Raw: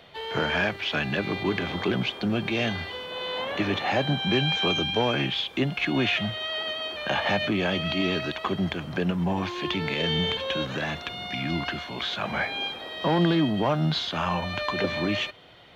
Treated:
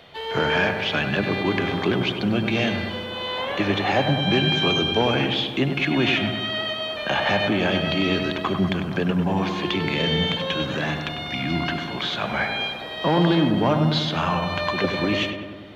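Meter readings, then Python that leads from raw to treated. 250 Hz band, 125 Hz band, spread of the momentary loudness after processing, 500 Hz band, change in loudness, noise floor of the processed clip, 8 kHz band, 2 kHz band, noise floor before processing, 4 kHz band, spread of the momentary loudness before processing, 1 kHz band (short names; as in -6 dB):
+4.5 dB, +4.5 dB, 7 LU, +4.5 dB, +4.0 dB, -32 dBFS, n/a, +3.5 dB, -40 dBFS, +3.5 dB, 7 LU, +4.5 dB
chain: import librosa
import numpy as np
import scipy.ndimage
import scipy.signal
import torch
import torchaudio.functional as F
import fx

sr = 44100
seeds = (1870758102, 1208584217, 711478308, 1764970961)

y = fx.echo_filtered(x, sr, ms=98, feedback_pct=70, hz=2100.0, wet_db=-6.5)
y = y * 10.0 ** (3.0 / 20.0)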